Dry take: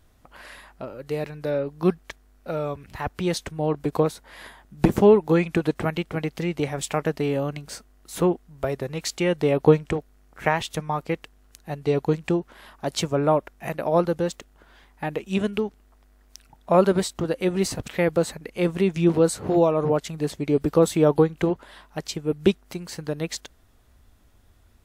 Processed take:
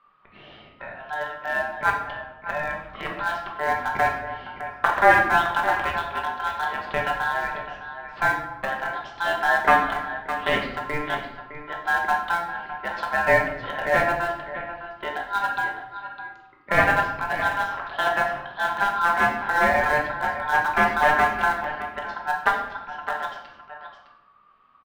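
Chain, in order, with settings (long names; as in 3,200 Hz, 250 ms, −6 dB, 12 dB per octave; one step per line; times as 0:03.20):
wavefolder on the positive side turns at −15.5 dBFS
low-pass filter 2,600 Hz 24 dB per octave
ring modulation 1,200 Hz
single-tap delay 610 ms −10.5 dB
in parallel at −12 dB: centre clipping without the shift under −19 dBFS
on the sum: rectangular room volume 310 cubic metres, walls mixed, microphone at 1.2 metres
level −2 dB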